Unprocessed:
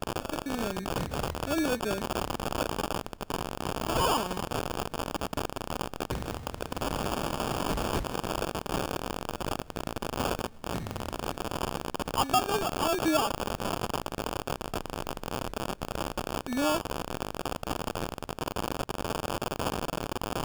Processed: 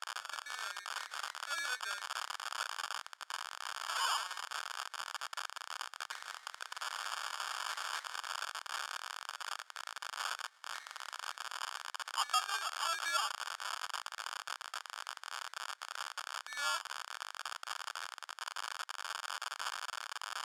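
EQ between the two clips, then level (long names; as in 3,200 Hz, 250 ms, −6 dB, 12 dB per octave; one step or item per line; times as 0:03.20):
four-pole ladder high-pass 1,200 Hz, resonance 30%
low-pass filter 8,700 Hz 12 dB per octave
parametric band 2,600 Hz −9.5 dB 0.31 octaves
+5.0 dB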